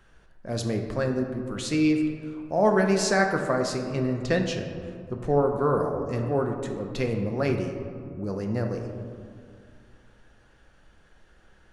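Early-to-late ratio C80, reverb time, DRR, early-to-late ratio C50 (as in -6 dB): 7.0 dB, 2.3 s, 3.0 dB, 5.5 dB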